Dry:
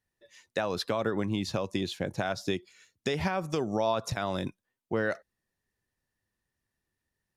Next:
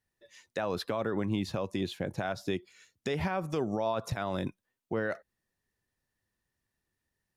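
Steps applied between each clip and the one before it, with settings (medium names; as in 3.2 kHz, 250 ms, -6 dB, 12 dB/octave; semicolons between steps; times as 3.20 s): dynamic bell 5.9 kHz, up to -7 dB, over -53 dBFS, Q 0.78; peak limiter -21 dBFS, peak gain reduction 4 dB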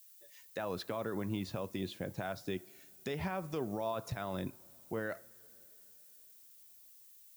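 added noise violet -53 dBFS; on a send at -15.5 dB: reverberation, pre-delay 3 ms; on the sum: trim -6 dB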